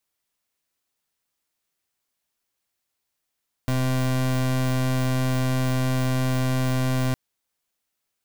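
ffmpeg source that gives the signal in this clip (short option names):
-f lavfi -i "aevalsrc='0.075*(2*lt(mod(129*t,1),0.3)-1)':d=3.46:s=44100"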